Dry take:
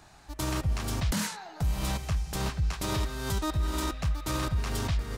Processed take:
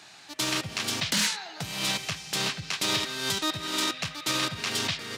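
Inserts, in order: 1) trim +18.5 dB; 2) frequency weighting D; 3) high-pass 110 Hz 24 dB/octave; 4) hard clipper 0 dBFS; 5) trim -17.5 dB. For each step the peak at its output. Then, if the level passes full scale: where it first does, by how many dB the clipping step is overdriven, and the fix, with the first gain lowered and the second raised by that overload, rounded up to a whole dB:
-2.0 dBFS, +6.5 dBFS, +6.5 dBFS, 0.0 dBFS, -17.5 dBFS; step 2, 6.5 dB; step 1 +11.5 dB, step 5 -10.5 dB

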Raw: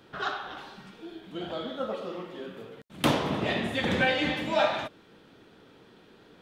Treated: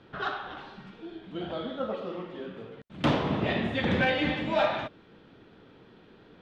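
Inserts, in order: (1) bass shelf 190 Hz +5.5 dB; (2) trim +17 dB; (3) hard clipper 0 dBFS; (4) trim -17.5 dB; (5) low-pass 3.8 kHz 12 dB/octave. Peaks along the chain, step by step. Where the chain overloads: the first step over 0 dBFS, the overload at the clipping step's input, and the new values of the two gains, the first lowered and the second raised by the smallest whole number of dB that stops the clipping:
-7.5 dBFS, +9.5 dBFS, 0.0 dBFS, -17.5 dBFS, -17.0 dBFS; step 2, 9.5 dB; step 2 +7 dB, step 4 -7.5 dB

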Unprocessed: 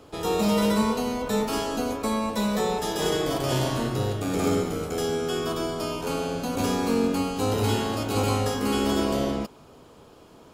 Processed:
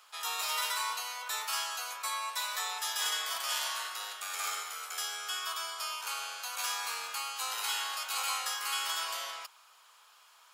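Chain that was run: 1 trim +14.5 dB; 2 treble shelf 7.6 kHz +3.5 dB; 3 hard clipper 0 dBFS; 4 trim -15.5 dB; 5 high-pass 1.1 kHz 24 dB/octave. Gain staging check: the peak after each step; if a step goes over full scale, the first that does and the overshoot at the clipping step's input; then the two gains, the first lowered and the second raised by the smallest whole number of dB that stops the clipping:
+5.0 dBFS, +5.5 dBFS, 0.0 dBFS, -15.5 dBFS, -20.0 dBFS; step 1, 5.5 dB; step 1 +8.5 dB, step 4 -9.5 dB

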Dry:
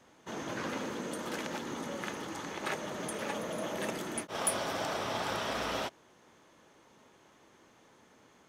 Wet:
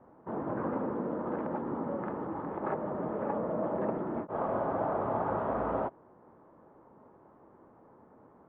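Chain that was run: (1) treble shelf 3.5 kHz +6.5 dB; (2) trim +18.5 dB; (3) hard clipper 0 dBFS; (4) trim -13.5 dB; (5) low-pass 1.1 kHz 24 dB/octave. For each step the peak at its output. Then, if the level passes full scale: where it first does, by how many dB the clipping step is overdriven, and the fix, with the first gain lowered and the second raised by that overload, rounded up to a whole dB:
-11.5 dBFS, +7.0 dBFS, 0.0 dBFS, -13.5 dBFS, -19.0 dBFS; step 2, 7.0 dB; step 2 +11.5 dB, step 4 -6.5 dB

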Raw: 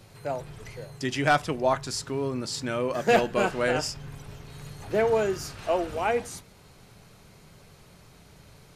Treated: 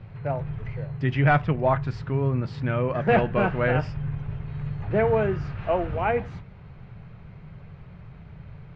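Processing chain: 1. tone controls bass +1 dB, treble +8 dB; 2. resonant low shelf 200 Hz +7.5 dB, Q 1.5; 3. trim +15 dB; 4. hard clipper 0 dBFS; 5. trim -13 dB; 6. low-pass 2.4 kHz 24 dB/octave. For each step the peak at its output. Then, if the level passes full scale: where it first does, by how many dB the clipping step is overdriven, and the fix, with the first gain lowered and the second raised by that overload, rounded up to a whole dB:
-9.5 dBFS, -9.0 dBFS, +6.0 dBFS, 0.0 dBFS, -13.0 dBFS, -11.5 dBFS; step 3, 6.0 dB; step 3 +9 dB, step 5 -7 dB

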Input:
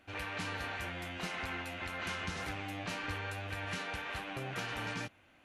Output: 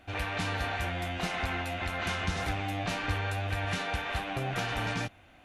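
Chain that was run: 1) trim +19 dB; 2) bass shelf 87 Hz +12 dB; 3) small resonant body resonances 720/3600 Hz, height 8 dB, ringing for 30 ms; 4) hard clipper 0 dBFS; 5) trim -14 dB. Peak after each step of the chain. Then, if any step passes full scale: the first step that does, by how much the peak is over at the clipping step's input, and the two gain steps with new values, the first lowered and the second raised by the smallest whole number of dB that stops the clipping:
-6.0 dBFS, -3.5 dBFS, -3.0 dBFS, -3.0 dBFS, -17.0 dBFS; nothing clips

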